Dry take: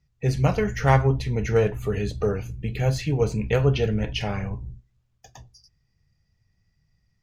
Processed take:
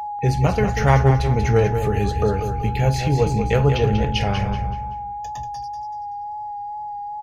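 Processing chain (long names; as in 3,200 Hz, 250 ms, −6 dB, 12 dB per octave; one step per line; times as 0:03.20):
parametric band 75 Hz +5.5 dB 0.65 octaves
in parallel at +1 dB: downward compressor, threshold −28 dBFS, peak gain reduction 15 dB
on the sum: steady tone 830 Hz −26 dBFS
repeating echo 190 ms, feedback 36%, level −8 dB
tape wow and flutter 23 cents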